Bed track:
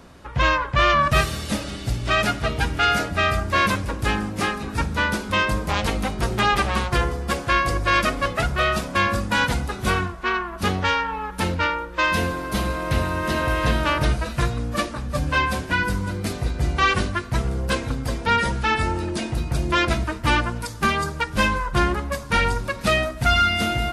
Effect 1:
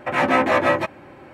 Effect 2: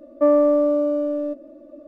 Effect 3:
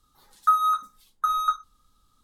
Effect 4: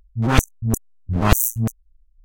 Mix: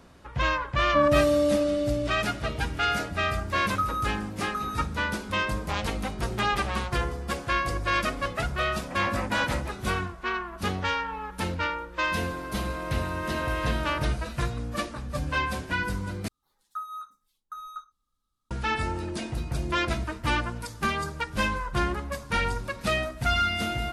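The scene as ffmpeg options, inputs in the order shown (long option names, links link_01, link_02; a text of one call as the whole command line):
ffmpeg -i bed.wav -i cue0.wav -i cue1.wav -i cue2.wav -filter_complex "[3:a]asplit=2[link_01][link_02];[0:a]volume=-6.5dB[link_03];[2:a]alimiter=level_in=12dB:limit=-1dB:release=50:level=0:latency=1[link_04];[link_03]asplit=2[link_05][link_06];[link_05]atrim=end=16.284[link_07];[link_02]atrim=end=2.23,asetpts=PTS-STARTPTS,volume=-16dB[link_08];[link_06]atrim=start=18.506[link_09];[link_04]atrim=end=1.87,asetpts=PTS-STARTPTS,volume=-15.5dB,afade=type=in:duration=0.004:curve=hsin,afade=type=out:start_time=1.866:duration=0.004:curve=hsin,adelay=740[link_10];[link_01]atrim=end=2.23,asetpts=PTS-STARTPTS,volume=-8.5dB,afade=type=in:duration=0.004:curve=hsin,afade=type=out:start_time=2.226:duration=0.004:curve=hsin,adelay=3310[link_11];[1:a]atrim=end=1.33,asetpts=PTS-STARTPTS,volume=-16dB,afade=type=in:duration=0.004:curve=hsin,afade=type=out:start_time=1.326:duration=0.004:curve=hsin,adelay=8840[link_12];[link_07][link_08]acrossfade=duration=0.004:curve1=hsin:curve2=hsin[link_13];[link_13][link_09]acrossfade=duration=0.004:curve1=hsin:curve2=hsin[link_14];[link_14][link_10][link_11][link_12]amix=inputs=4:normalize=0" out.wav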